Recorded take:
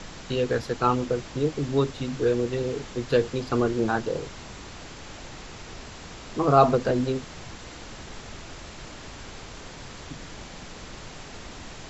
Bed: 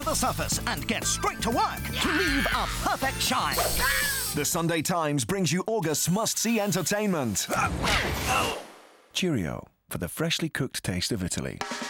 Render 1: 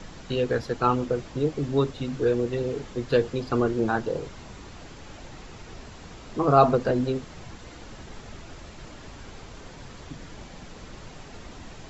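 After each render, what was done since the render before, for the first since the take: denoiser 6 dB, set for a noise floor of -42 dBFS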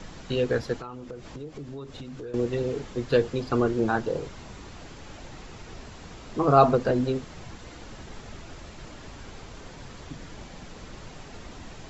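0.76–2.34 compressor, threshold -36 dBFS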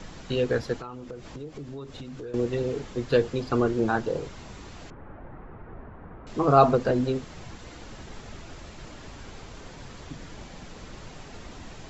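4.9–6.27 LPF 1600 Hz 24 dB/oct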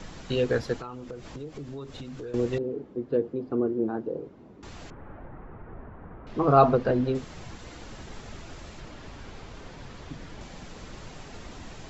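2.58–4.63 band-pass 310 Hz, Q 1.4; 5.26–7.15 air absorption 160 m; 8.8–10.41 air absorption 64 m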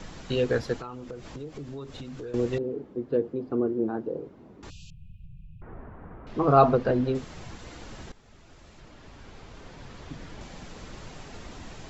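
4.7–5.62 brick-wall FIR band-stop 190–2400 Hz; 8.12–10.21 fade in, from -16.5 dB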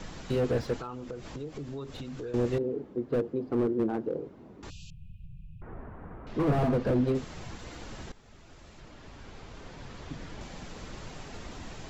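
slew limiter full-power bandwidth 28 Hz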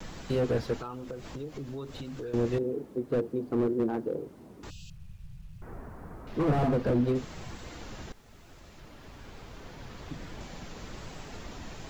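bit-crush 11-bit; vibrato 1.1 Hz 42 cents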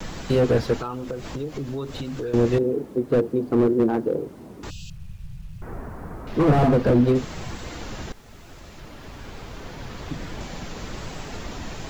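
gain +8.5 dB

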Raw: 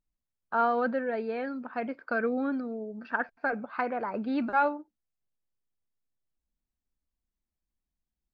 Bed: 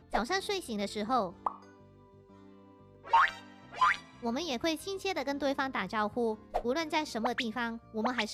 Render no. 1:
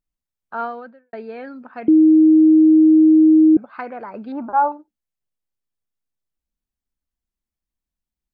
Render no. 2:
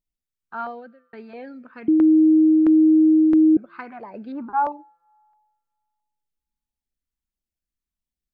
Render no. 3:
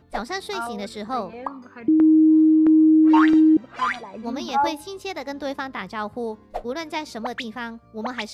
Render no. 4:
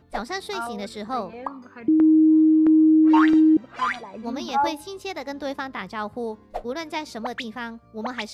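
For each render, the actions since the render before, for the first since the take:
0.63–1.13 fade out quadratic; 1.88–3.57 bleep 314 Hz -7.5 dBFS; 4.32–4.72 synth low-pass 960 Hz, resonance Q 4.7
resonator 170 Hz, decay 2 s, mix 30%; LFO notch saw down 1.5 Hz 440–1600 Hz
add bed +2.5 dB
gain -1 dB

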